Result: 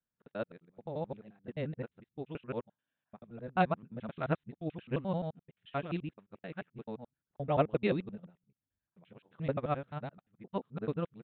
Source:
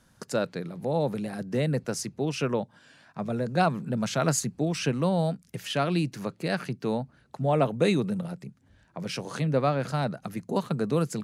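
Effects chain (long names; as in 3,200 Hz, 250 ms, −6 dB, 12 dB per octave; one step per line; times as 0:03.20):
reversed piece by piece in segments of 87 ms
downsampling to 8,000 Hz
expander for the loud parts 2.5 to 1, over −40 dBFS
level −2.5 dB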